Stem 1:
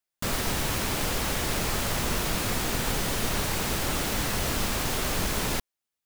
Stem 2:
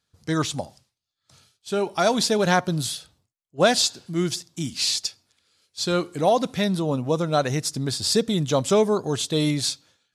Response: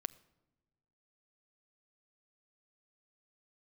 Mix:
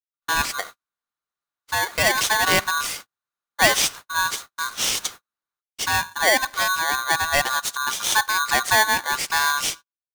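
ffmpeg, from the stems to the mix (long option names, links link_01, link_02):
-filter_complex "[0:a]highpass=frequency=58:width=0.5412,highpass=frequency=58:width=1.3066,lowshelf=frequency=420:gain=6.5,asoftclip=type=tanh:threshold=-27.5dB,volume=-13.5dB,asplit=2[link_01][link_02];[link_02]volume=-21.5dB[link_03];[1:a]volume=-2.5dB,asplit=2[link_04][link_05];[link_05]volume=-5dB[link_06];[2:a]atrim=start_sample=2205[link_07];[link_03][link_06]amix=inputs=2:normalize=0[link_08];[link_08][link_07]afir=irnorm=-1:irlink=0[link_09];[link_01][link_04][link_09]amix=inputs=3:normalize=0,agate=range=-49dB:threshold=-34dB:ratio=16:detection=peak,aeval=exprs='val(0)*sgn(sin(2*PI*1300*n/s))':channel_layout=same"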